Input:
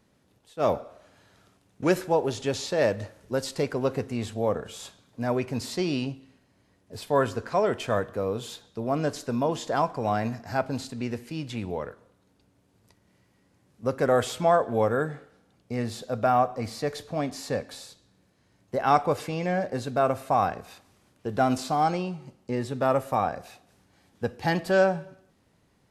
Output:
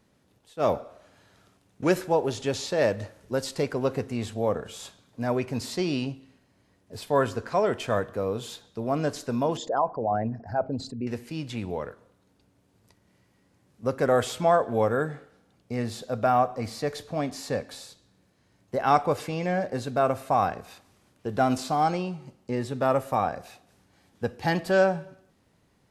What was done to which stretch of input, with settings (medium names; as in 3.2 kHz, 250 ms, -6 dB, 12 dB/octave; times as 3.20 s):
9.57–11.07 s: resonances exaggerated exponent 2